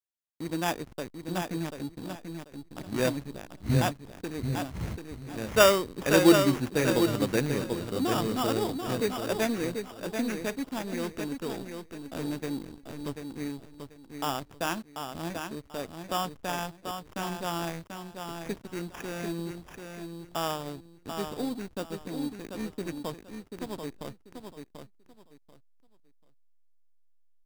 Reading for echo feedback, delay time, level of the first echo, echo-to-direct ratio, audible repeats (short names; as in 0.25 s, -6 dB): 23%, 0.738 s, -6.5 dB, -6.5 dB, 3